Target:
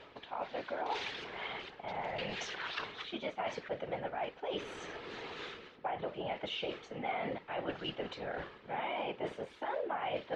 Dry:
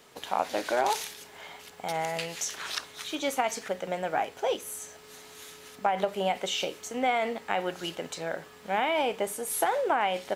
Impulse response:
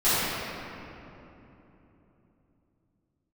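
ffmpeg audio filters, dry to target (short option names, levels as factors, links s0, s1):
-af "lowpass=f=3600:w=0.5412,lowpass=f=3600:w=1.3066,areverse,acompressor=threshold=0.00708:ratio=5,areverse,afftfilt=real='hypot(re,im)*cos(2*PI*random(0))':imag='hypot(re,im)*sin(2*PI*random(1))':win_size=512:overlap=0.75,volume=3.98"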